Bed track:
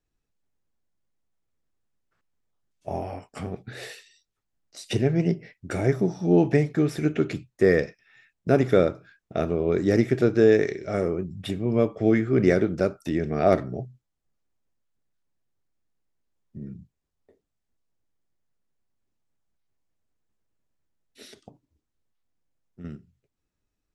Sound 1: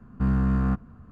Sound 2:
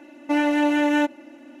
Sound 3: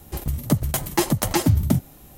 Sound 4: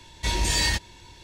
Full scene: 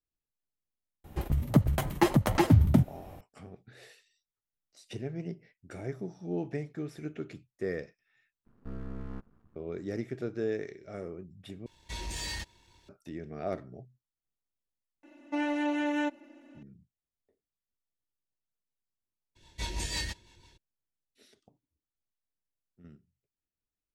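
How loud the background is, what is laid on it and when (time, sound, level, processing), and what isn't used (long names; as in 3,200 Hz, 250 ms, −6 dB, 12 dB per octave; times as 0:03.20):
bed track −15 dB
0:01.04: mix in 3 −2.5 dB + bass and treble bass 0 dB, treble −14 dB
0:08.45: overwrite with 1 −13 dB + half-wave rectification
0:11.66: overwrite with 4 −16.5 dB + leveller curve on the samples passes 1
0:15.03: mix in 2 −10 dB + gate on every frequency bin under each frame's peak −50 dB strong
0:19.35: mix in 4 −9 dB, fades 0.02 s + rotating-speaker cabinet horn 6 Hz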